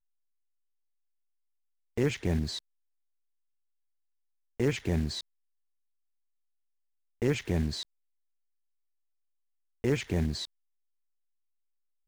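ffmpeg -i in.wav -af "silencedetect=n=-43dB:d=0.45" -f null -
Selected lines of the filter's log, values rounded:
silence_start: 0.00
silence_end: 1.97 | silence_duration: 1.97
silence_start: 2.59
silence_end: 4.60 | silence_duration: 2.01
silence_start: 5.21
silence_end: 7.22 | silence_duration: 2.01
silence_start: 7.83
silence_end: 9.84 | silence_duration: 2.01
silence_start: 10.45
silence_end: 12.07 | silence_duration: 1.62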